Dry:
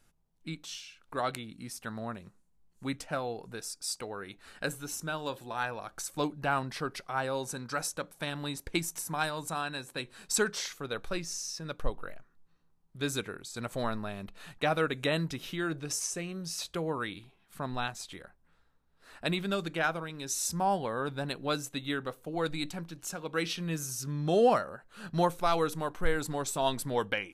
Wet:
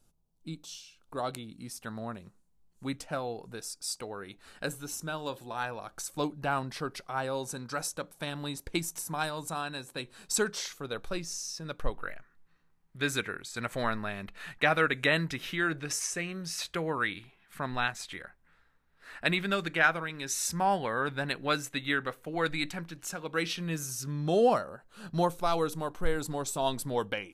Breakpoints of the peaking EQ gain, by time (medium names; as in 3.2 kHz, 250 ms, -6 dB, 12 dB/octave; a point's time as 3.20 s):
peaking EQ 1.9 kHz 1.1 oct
0.87 s -13.5 dB
1.84 s -2.5 dB
11.60 s -2.5 dB
12.06 s +9.5 dB
22.66 s +9.5 dB
23.31 s +2.5 dB
24.00 s +2.5 dB
24.61 s -4.5 dB